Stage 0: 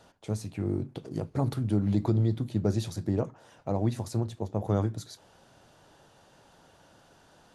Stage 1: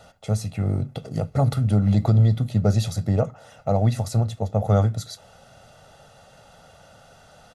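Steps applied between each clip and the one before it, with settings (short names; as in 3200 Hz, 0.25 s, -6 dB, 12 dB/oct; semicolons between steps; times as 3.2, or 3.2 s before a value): comb 1.5 ms, depth 74%; gain +6 dB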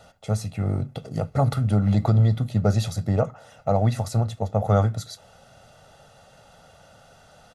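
dynamic EQ 1200 Hz, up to +5 dB, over -38 dBFS, Q 0.74; gain -1.5 dB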